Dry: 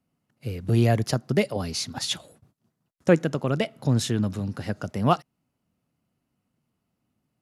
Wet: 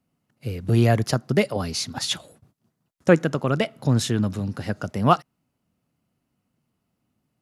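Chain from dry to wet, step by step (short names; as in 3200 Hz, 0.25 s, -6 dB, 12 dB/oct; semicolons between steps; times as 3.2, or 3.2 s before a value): dynamic EQ 1300 Hz, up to +4 dB, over -39 dBFS, Q 1.5; gain +2 dB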